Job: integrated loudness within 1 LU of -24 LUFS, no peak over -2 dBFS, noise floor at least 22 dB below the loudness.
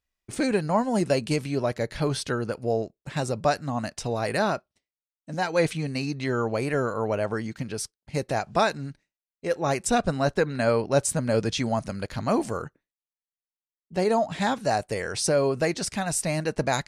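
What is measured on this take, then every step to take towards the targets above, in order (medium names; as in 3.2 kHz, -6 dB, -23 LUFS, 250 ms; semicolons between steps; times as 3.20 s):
loudness -26.5 LUFS; peak level -9.5 dBFS; loudness target -24.0 LUFS
-> trim +2.5 dB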